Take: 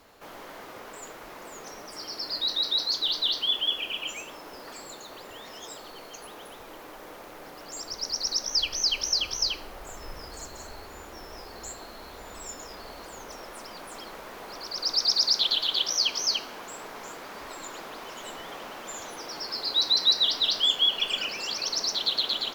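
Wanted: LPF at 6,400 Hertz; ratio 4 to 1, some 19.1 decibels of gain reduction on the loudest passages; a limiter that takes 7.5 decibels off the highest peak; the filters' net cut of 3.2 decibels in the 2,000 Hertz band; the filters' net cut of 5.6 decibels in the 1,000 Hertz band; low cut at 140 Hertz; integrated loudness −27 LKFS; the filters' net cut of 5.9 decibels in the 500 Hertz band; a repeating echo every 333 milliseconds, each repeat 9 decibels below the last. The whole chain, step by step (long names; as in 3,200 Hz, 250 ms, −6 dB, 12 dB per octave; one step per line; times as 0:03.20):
high-pass filter 140 Hz
low-pass filter 6,400 Hz
parametric band 500 Hz −6 dB
parametric band 1,000 Hz −4.5 dB
parametric band 2,000 Hz −3 dB
downward compressor 4 to 1, threshold −44 dBFS
brickwall limiter −38 dBFS
repeating echo 333 ms, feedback 35%, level −9 dB
level +18.5 dB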